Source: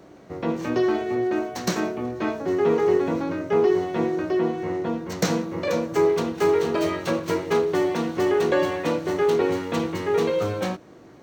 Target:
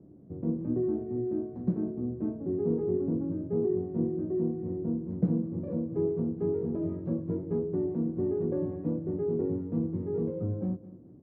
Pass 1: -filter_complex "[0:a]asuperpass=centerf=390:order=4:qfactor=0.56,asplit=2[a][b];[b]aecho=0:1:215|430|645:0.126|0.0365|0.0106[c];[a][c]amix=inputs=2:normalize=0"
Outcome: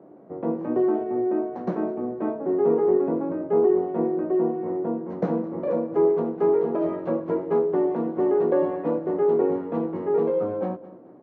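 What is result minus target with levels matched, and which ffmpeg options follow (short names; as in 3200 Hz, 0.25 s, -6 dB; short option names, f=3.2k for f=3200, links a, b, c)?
125 Hz band -11.5 dB
-filter_complex "[0:a]asuperpass=centerf=120:order=4:qfactor=0.56,asplit=2[a][b];[b]aecho=0:1:215|430|645:0.126|0.0365|0.0106[c];[a][c]amix=inputs=2:normalize=0"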